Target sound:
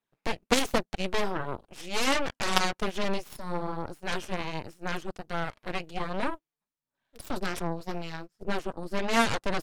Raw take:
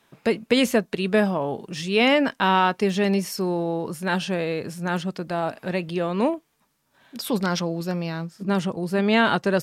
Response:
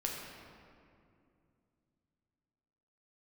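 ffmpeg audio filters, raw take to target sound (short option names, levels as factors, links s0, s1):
-af "flanger=delay=0.1:depth=6.7:regen=-26:speed=1.3:shape=sinusoidal,aeval=exprs='0.398*(cos(1*acos(clip(val(0)/0.398,-1,1)))-cos(1*PI/2))+0.112*(cos(3*acos(clip(val(0)/0.398,-1,1)))-cos(3*PI/2))+0.0891*(cos(6*acos(clip(val(0)/0.398,-1,1)))-cos(6*PI/2))+0.00562*(cos(7*acos(clip(val(0)/0.398,-1,1)))-cos(7*PI/2))+0.1*(cos(8*acos(clip(val(0)/0.398,-1,1)))-cos(8*PI/2))':c=same,volume=1.33"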